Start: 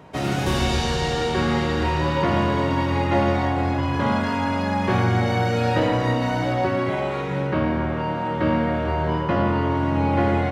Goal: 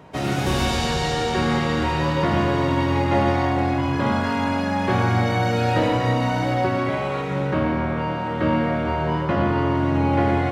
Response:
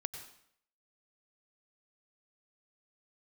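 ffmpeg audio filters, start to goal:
-filter_complex "[0:a]asplit=2[link_01][link_02];[1:a]atrim=start_sample=2205,highshelf=frequency=5100:gain=10.5,adelay=123[link_03];[link_02][link_03]afir=irnorm=-1:irlink=0,volume=-9.5dB[link_04];[link_01][link_04]amix=inputs=2:normalize=0"

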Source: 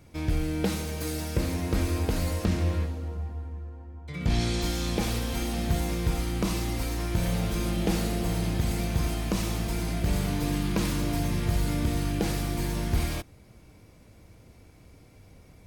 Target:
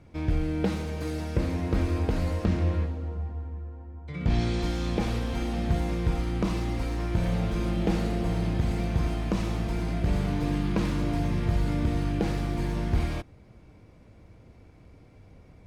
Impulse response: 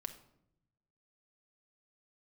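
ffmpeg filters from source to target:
-af "aemphasis=mode=reproduction:type=75fm"

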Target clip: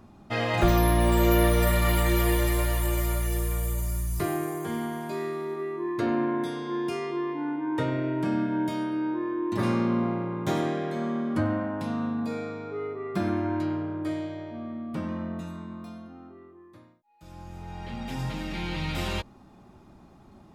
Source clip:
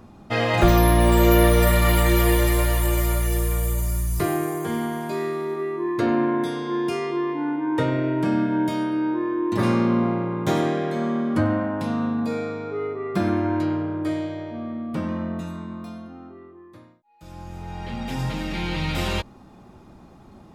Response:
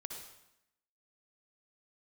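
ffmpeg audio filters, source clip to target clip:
-af "bandreject=frequency=490:width=14,volume=-5dB"

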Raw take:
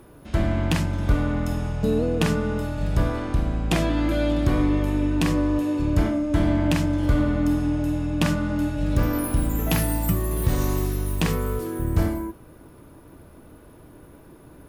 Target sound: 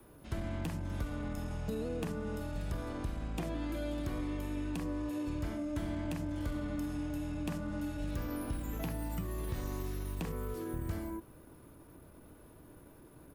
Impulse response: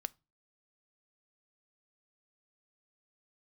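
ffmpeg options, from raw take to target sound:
-filter_complex "[0:a]adynamicequalizer=threshold=0.0112:dfrequency=130:dqfactor=3:tfrequency=130:tqfactor=3:attack=5:release=100:ratio=0.375:range=2:mode=cutabove:tftype=bell,acrossover=split=1100|2900|6500[link_01][link_02][link_03][link_04];[link_01]acompressor=threshold=-26dB:ratio=4[link_05];[link_02]acompressor=threshold=-45dB:ratio=4[link_06];[link_03]acompressor=threshold=-52dB:ratio=4[link_07];[link_04]acompressor=threshold=-52dB:ratio=4[link_08];[link_05][link_06][link_07][link_08]amix=inputs=4:normalize=0,atempo=1.1,acrossover=split=390[link_09][link_10];[link_10]crystalizer=i=0.5:c=0[link_11];[link_09][link_11]amix=inputs=2:normalize=0,volume=-8.5dB"

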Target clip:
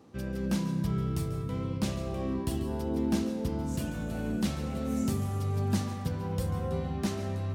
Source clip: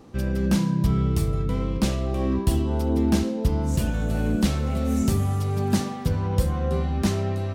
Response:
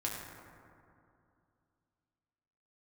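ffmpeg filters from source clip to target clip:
-filter_complex "[0:a]highpass=89,asplit=2[link_01][link_02];[1:a]atrim=start_sample=2205,adelay=141[link_03];[link_02][link_03]afir=irnorm=-1:irlink=0,volume=-12.5dB[link_04];[link_01][link_04]amix=inputs=2:normalize=0,volume=-7.5dB"

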